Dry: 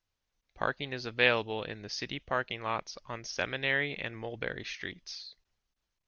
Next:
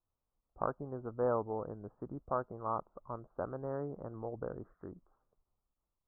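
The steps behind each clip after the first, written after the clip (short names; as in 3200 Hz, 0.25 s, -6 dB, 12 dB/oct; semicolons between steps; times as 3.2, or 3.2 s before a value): steep low-pass 1300 Hz 72 dB/oct; gain -2 dB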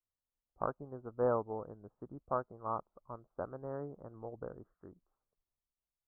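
upward expander 1.5:1, over -55 dBFS; gain +1.5 dB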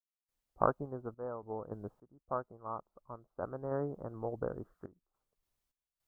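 random-step tremolo 3.5 Hz, depth 100%; gain +9.5 dB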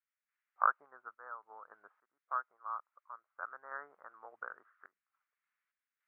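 Butterworth band-pass 1700 Hz, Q 1.8; gain +10.5 dB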